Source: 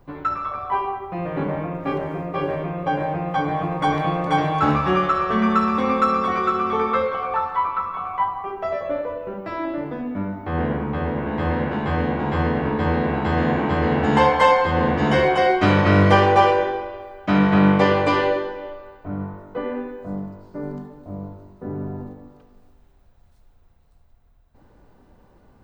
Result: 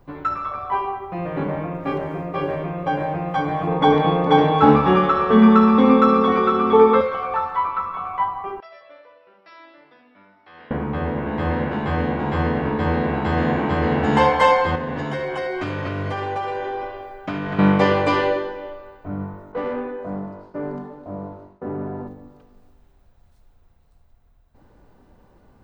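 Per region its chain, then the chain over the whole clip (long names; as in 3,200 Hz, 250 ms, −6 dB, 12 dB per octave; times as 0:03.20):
0:03.67–0:07.01: low-pass filter 4,800 Hz + hollow resonant body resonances 250/440/850/3,400 Hz, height 13 dB, ringing for 50 ms
0:08.60–0:10.71: linear-phase brick-wall low-pass 5,800 Hz + first difference
0:14.75–0:17.59: comb filter 7.5 ms, depth 60% + downward compressor 12 to 1, threshold −22 dBFS
0:19.52–0:22.08: mid-hump overdrive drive 16 dB, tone 1,200 Hz, clips at −17.5 dBFS + downward expander −40 dBFS
whole clip: no processing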